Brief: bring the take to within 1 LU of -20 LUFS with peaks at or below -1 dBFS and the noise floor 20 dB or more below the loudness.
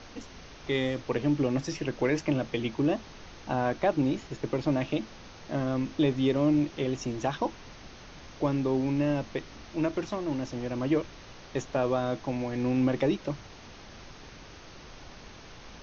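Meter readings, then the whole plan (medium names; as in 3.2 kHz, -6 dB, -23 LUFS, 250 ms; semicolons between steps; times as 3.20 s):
noise floor -48 dBFS; noise floor target -50 dBFS; loudness -29.5 LUFS; peak level -12.5 dBFS; loudness target -20.0 LUFS
-> noise print and reduce 6 dB; trim +9.5 dB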